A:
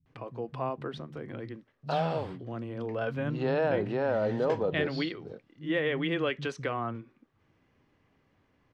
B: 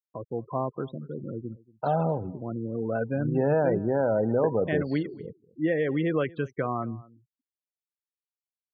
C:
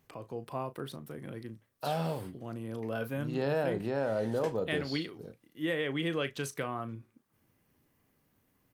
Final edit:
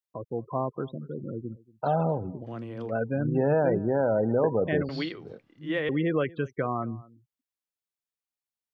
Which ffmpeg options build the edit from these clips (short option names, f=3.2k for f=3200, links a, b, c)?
-filter_complex "[0:a]asplit=2[a][b];[1:a]asplit=3[c][d][e];[c]atrim=end=2.47[f];[a]atrim=start=2.41:end=2.93[g];[d]atrim=start=2.87:end=4.892[h];[b]atrim=start=4.888:end=5.892[i];[e]atrim=start=5.888[j];[f][g]acrossfade=d=0.06:c1=tri:c2=tri[k];[k][h]acrossfade=d=0.06:c1=tri:c2=tri[l];[l][i]acrossfade=d=0.004:c1=hsin:c2=hsin[m];[m][j]acrossfade=d=0.004:c1=hsin:c2=hsin"